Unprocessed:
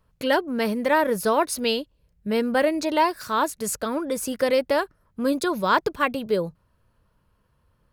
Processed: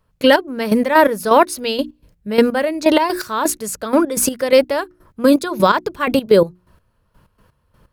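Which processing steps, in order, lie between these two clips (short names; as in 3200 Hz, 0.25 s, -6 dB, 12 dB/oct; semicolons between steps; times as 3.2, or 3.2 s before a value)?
notches 60/120/180/240/300/360 Hz; step gate "..x...x.x" 126 bpm -12 dB; maximiser +15 dB; gain -1 dB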